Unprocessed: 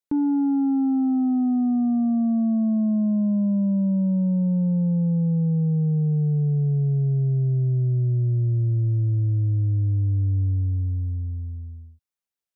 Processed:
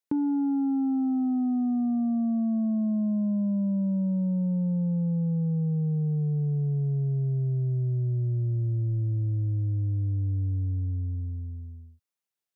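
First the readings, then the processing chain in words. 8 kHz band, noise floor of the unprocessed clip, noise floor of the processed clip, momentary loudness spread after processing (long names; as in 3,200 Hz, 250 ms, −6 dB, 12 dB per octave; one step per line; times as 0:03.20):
can't be measured, below −85 dBFS, below −85 dBFS, 3 LU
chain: high-pass filter 97 Hz 12 dB per octave
downward compressor, threshold −24 dBFS, peak gain reduction 4.5 dB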